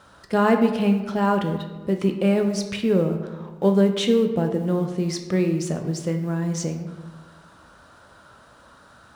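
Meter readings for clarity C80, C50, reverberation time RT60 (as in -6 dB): 9.5 dB, 8.0 dB, 1.3 s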